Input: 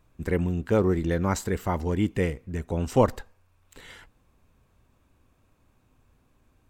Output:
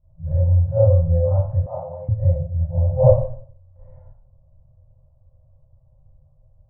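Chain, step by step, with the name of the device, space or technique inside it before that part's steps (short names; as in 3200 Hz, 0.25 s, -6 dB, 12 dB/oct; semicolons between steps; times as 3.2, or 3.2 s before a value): FFT band-reject 170–510 Hz; next room (LPF 580 Hz 24 dB/oct; reverb RT60 0.55 s, pre-delay 29 ms, DRR -11.5 dB); 1.66–2.09 Bessel high-pass 220 Hz, order 8; dynamic EQ 490 Hz, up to +3 dB, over -23 dBFS, Q 1.7; gain -2.5 dB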